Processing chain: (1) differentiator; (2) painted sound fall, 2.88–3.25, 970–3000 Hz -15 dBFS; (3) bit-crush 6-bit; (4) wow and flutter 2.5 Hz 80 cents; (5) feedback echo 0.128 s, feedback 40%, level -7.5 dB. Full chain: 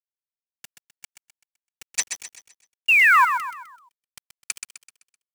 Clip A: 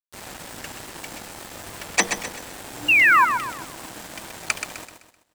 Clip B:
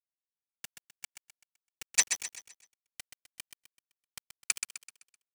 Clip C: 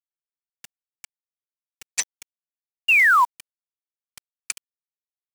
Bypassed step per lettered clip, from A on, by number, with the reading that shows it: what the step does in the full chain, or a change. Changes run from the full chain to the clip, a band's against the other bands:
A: 1, 4 kHz band +1.5 dB; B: 2, 1 kHz band -23.5 dB; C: 5, echo-to-direct -6.5 dB to none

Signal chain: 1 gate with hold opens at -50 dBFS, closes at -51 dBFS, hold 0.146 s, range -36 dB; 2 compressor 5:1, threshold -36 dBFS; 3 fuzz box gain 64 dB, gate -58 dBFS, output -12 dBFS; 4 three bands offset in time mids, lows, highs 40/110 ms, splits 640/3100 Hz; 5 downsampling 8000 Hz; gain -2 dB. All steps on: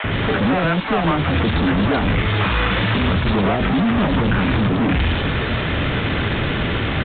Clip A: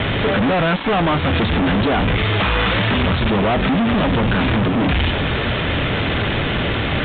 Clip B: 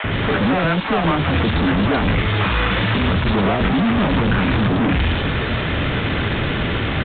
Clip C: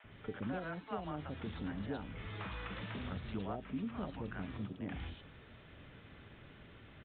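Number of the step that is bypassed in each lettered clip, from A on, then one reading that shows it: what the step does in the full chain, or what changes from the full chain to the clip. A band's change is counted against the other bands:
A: 4, crest factor change -5.0 dB; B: 2, mean gain reduction 6.0 dB; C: 3, distortion -2 dB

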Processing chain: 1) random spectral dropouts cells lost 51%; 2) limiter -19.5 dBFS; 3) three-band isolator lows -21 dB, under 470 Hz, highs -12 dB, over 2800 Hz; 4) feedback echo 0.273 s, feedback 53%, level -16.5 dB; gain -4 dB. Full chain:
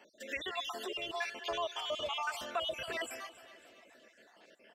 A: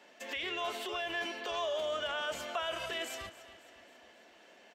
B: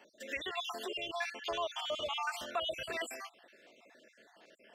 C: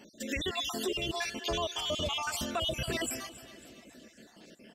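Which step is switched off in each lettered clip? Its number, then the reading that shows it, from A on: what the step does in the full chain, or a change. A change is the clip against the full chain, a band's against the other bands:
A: 1, 1 kHz band -2.0 dB; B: 4, echo-to-direct -15.0 dB to none; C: 3, 125 Hz band +16.0 dB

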